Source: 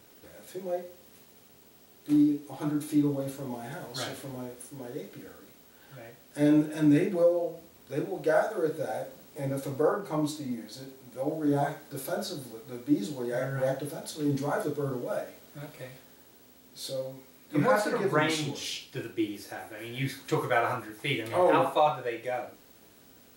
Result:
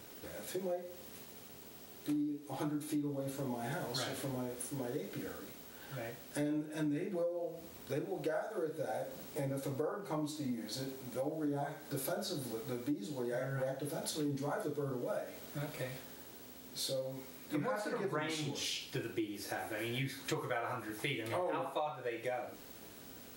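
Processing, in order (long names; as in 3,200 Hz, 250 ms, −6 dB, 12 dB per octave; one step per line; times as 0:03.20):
downward compressor 6 to 1, threshold −39 dBFS, peak gain reduction 19 dB
level +3.5 dB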